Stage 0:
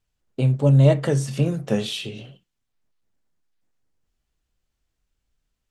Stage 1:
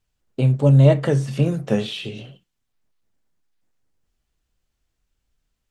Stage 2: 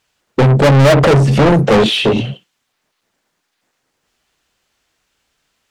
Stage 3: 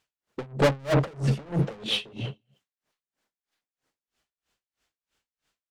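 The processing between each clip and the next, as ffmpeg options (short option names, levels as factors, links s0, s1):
-filter_complex "[0:a]acrossover=split=3700[s0][s1];[s1]acompressor=threshold=0.00562:ratio=4:attack=1:release=60[s2];[s0][s2]amix=inputs=2:normalize=0,volume=1.26"
-filter_complex "[0:a]afwtdn=0.0562,asplit=2[s0][s1];[s1]highpass=f=720:p=1,volume=112,asoftclip=type=tanh:threshold=0.794[s2];[s0][s2]amix=inputs=2:normalize=0,lowpass=f=5100:p=1,volume=0.501"
-af "aecho=1:1:203:0.0944,aeval=exprs='val(0)*pow(10,-30*(0.5-0.5*cos(2*PI*3.1*n/s))/20)':c=same,volume=0.376"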